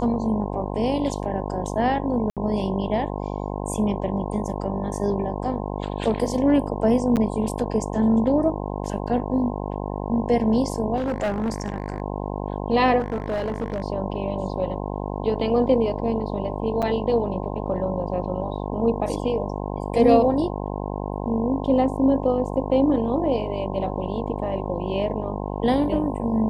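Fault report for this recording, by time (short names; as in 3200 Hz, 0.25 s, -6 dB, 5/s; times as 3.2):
buzz 50 Hz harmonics 21 -29 dBFS
2.3–2.37 gap 67 ms
7.16–7.17 gap 8.8 ms
10.96–12.02 clipped -20.5 dBFS
12.99–13.84 clipped -21.5 dBFS
16.82–16.83 gap 6.4 ms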